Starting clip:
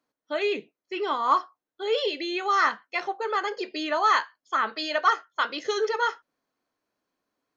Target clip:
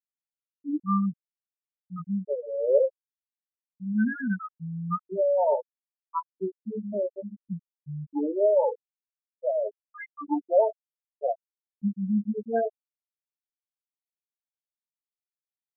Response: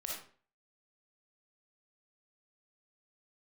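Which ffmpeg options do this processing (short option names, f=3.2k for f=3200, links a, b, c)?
-af "aexciter=amount=2.4:drive=1.8:freq=2.5k,afftfilt=real='re*gte(hypot(re,im),0.316)':imag='im*gte(hypot(re,im),0.316)':win_size=1024:overlap=0.75,asetrate=21168,aresample=44100"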